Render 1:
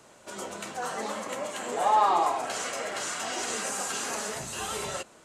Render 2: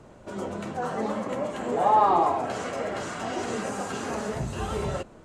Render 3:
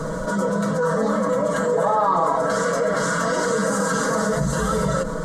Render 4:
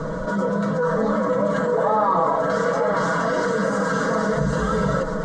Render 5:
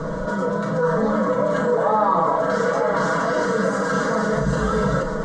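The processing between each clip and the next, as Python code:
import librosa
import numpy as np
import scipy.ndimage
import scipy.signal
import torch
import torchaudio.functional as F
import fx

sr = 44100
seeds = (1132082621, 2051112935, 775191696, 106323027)

y1 = fx.tilt_eq(x, sr, slope=-4.0)
y1 = y1 * 10.0 ** (1.5 / 20.0)
y2 = fx.fixed_phaser(y1, sr, hz=510.0, stages=8)
y2 = y2 + 0.84 * np.pad(y2, (int(6.2 * sr / 1000.0), 0))[:len(y2)]
y2 = fx.env_flatten(y2, sr, amount_pct=70)
y2 = y2 * 10.0 ** (2.5 / 20.0)
y3 = fx.air_absorb(y2, sr, metres=130.0)
y3 = y3 + 10.0 ** (-8.5 / 20.0) * np.pad(y3, (int(876 * sr / 1000.0), 0))[:len(y3)]
y4 = fx.doubler(y3, sr, ms=37.0, db=-7)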